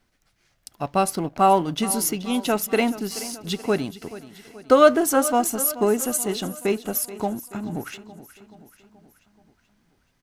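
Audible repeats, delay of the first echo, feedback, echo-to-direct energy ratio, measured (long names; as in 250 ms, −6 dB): 4, 429 ms, 55%, −14.5 dB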